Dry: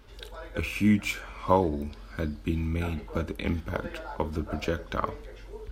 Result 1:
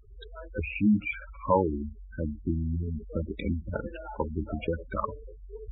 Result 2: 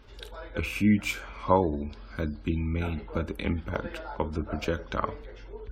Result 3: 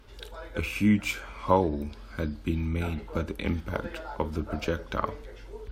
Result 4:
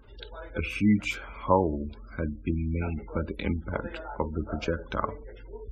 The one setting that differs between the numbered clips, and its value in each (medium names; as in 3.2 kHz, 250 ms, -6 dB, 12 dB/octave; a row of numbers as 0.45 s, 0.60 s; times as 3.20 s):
spectral gate, under each frame's peak: -10 dB, -40 dB, -55 dB, -25 dB